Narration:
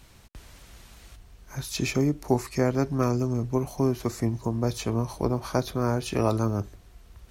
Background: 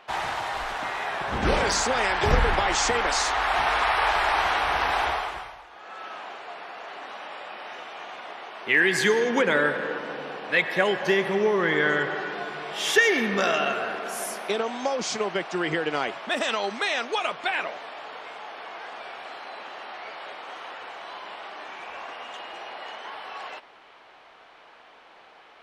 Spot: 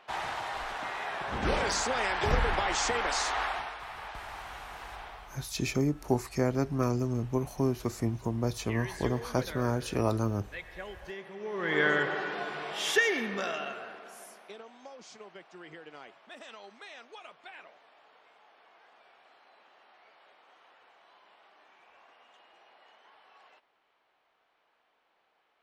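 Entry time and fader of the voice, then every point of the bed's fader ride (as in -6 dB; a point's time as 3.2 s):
3.80 s, -4.0 dB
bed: 3.43 s -6 dB
3.78 s -20 dB
11.36 s -20 dB
11.79 s -3 dB
12.66 s -3 dB
14.69 s -21.5 dB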